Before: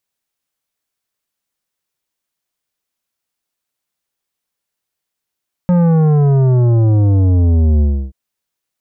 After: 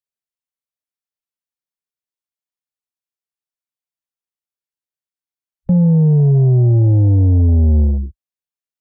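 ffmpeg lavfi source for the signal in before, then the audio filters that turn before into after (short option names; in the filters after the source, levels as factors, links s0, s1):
-f lavfi -i "aevalsrc='0.335*clip((2.43-t)/0.31,0,1)*tanh(3.55*sin(2*PI*180*2.43/log(65/180)*(exp(log(65/180)*t/2.43)-1)))/tanh(3.55)':d=2.43:s=44100"
-filter_complex "[0:a]acrossover=split=270|370[s0][s1][s2];[s2]acompressor=threshold=0.0224:ratio=6[s3];[s0][s1][s3]amix=inputs=3:normalize=0,afwtdn=0.0891"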